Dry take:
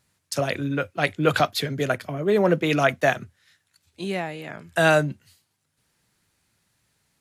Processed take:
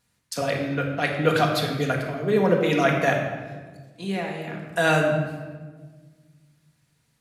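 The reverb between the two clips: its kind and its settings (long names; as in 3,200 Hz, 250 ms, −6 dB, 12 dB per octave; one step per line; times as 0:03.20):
rectangular room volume 1,300 cubic metres, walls mixed, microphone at 1.8 metres
level −3.5 dB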